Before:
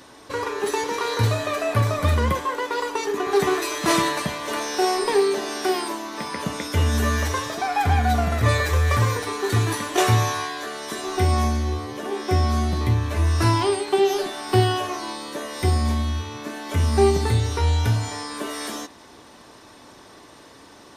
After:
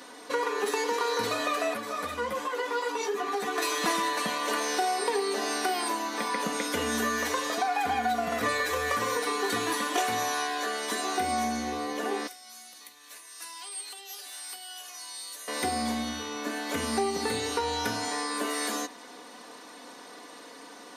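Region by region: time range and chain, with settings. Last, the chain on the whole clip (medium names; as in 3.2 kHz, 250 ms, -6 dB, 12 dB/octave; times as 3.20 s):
1.74–3.58 s: compression 2.5:1, threshold -25 dBFS + three-phase chorus
12.27–15.48 s: compression 2.5:1, threshold -29 dBFS + differentiator
whole clip: high-pass 290 Hz 12 dB/octave; comb 4.1 ms, depth 58%; compression 5:1, threshold -25 dBFS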